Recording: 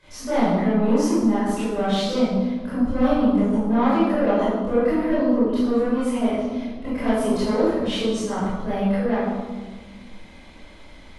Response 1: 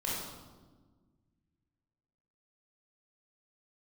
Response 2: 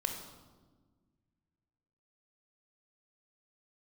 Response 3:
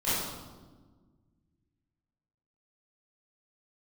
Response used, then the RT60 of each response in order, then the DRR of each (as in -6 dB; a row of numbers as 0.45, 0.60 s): 3; 1.4, 1.4, 1.4 s; -6.5, 3.5, -14.0 dB